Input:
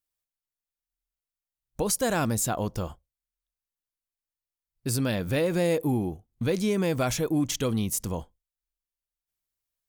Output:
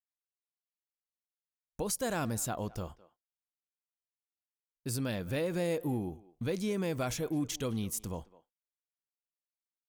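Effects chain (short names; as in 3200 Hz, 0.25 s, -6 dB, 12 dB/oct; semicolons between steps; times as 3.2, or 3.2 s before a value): speakerphone echo 0.21 s, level -19 dB; gate with hold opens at -50 dBFS; gain -7.5 dB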